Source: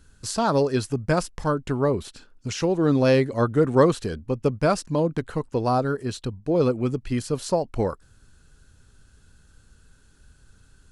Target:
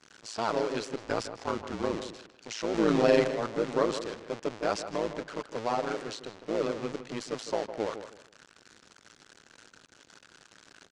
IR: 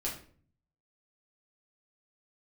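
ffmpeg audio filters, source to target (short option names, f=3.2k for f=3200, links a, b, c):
-filter_complex "[0:a]aeval=exprs='val(0)+0.5*0.0891*sgn(val(0))':c=same,lowpass=f=6.9k:w=0.5412,lowpass=f=6.9k:w=1.3066,agate=range=-33dB:threshold=-20dB:ratio=3:detection=peak,highpass=320,asettb=1/sr,asplit=3[a][b][c];[a]atrim=end=1.034[d];[b]atrim=start=1.03:end=2.05,asetpts=PTS-STARTPTS,afade=t=in:d=0.004:c=qsin,afade=t=out:st=1.016:d=0.004:c=qsin,afreqshift=-58[e];[c]atrim=start=2.046[f];[d][e]acrossfade=d=0.004:c1=hsin:c2=qsin[g];[g][f]acrossfade=d=0.004:c1=qsin:c2=hsin,asettb=1/sr,asplit=3[h][i][j];[h]atrim=end=2.744[k];[i]atrim=start=2.74:end=3.28,asetpts=PTS-STARTPTS,afade=t=in:d=0.004:c=qsin,afade=t=out:st=0.536:d=0.004:c=qsin,acontrast=75[l];[j]atrim=start=3.276[m];[k][l]acrossfade=d=0.004:c1=hsin:c2=qsin[n];[n][m]acrossfade=d=0.004:c1=qsin:c2=hsin,tremolo=f=110:d=0.919,asplit=2[o][p];[p]adelay=157,lowpass=f=2.6k:p=1,volume=-10.5dB,asplit=2[q][r];[r]adelay=157,lowpass=f=2.6k:p=1,volume=0.25,asplit=2[s][t];[t]adelay=157,lowpass=f=2.6k:p=1,volume=0.25[u];[o][q][s][u]amix=inputs=4:normalize=0,volume=-6dB"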